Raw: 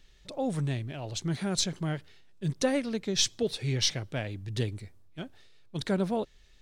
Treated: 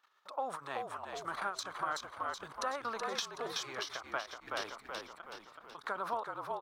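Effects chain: high-order bell 4 kHz -14.5 dB 2.8 oct; level held to a coarse grid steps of 18 dB; resonant high-pass 1.2 kHz, resonance Q 3.4; on a send: frequency-shifting echo 375 ms, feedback 50%, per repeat -50 Hz, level -5.5 dB; on the sum: compression, threshold -45 dBFS, peak gain reduction 6.5 dB; treble shelf 9.4 kHz -11 dB; endings held to a fixed fall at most 180 dB/s; trim +14 dB

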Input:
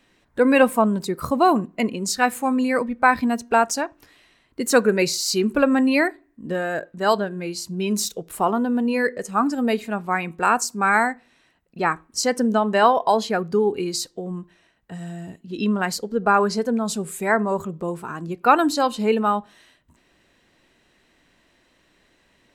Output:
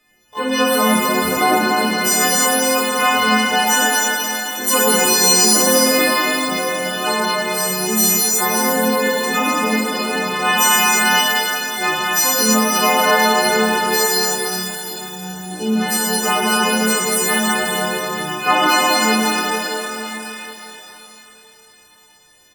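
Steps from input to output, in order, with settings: partials quantised in pitch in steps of 3 st; harmony voices -3 st -16 dB, +12 st -5 dB; pitch-shifted reverb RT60 3.5 s, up +12 st, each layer -8 dB, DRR -6.5 dB; trim -6 dB

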